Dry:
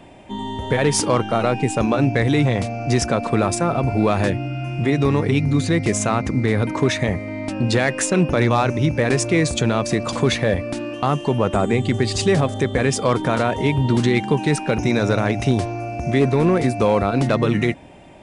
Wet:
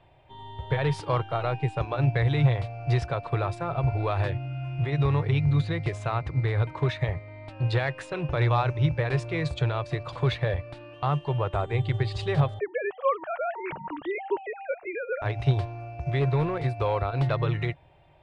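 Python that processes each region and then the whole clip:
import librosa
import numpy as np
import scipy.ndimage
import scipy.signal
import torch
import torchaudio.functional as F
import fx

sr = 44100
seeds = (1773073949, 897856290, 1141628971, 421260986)

y = fx.chain(x, sr, fx.sine_speech(),
    fx.air_absorb(metres=230.0), at=(12.59, 15.22))
y = fx.curve_eq(y, sr, hz=(150.0, 210.0, 350.0, 940.0, 2100.0, 4000.0, 6200.0), db=(0, -26, -9, -3, -6, -5, -21))
y = fx.upward_expand(y, sr, threshold_db=-33.0, expansion=1.5)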